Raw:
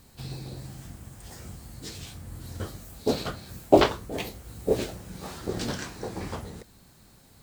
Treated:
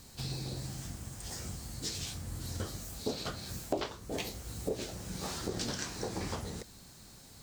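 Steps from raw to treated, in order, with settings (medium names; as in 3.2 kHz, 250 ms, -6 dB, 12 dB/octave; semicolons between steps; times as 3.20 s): peaking EQ 5.9 kHz +7.5 dB 1.3 oct; compression 5:1, threshold -33 dBFS, peak gain reduction 20 dB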